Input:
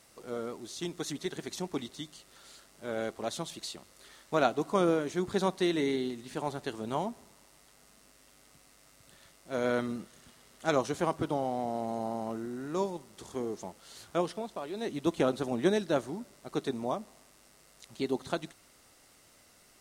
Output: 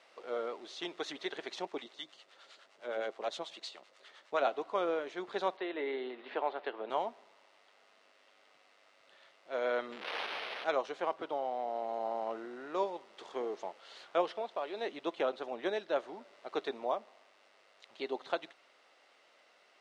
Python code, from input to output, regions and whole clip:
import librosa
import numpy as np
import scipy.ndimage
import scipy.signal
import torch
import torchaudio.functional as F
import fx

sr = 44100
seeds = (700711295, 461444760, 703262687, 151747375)

y = fx.chain(x, sr, fx.harmonic_tremolo(hz=9.7, depth_pct=70, crossover_hz=670.0),
    fx.peak_eq(hz=7200.0, db=4.0, octaves=0.8), at=(1.65, 4.47))
y = fx.chain(y, sr, fx.highpass(hz=290.0, slope=12),
    fx.air_absorb(metres=390.0),
    fx.band_squash(depth_pct=70), at=(5.57, 6.9))
y = fx.chain(y, sr, fx.crossing_spikes(level_db=-32.0),
    fx.resample_bad(factor=6, down='none', up='hold'),
    fx.peak_eq(hz=440.0, db=4.5, octaves=0.3), at=(9.91, 10.67))
y = scipy.signal.sosfilt(scipy.signal.cheby1(2, 1.0, [530.0, 3200.0], 'bandpass', fs=sr, output='sos'), y)
y = fx.rider(y, sr, range_db=3, speed_s=0.5)